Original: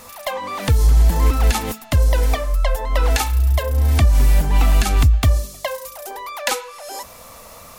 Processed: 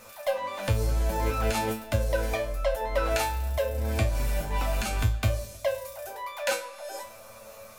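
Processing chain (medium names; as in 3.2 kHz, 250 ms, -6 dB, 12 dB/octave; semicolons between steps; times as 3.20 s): feedback comb 110 Hz, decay 0.32 s, harmonics all, mix 90%; small resonant body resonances 570/1500/2400 Hz, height 13 dB, ringing for 45 ms; on a send: reverberation RT60 2.0 s, pre-delay 65 ms, DRR 19 dB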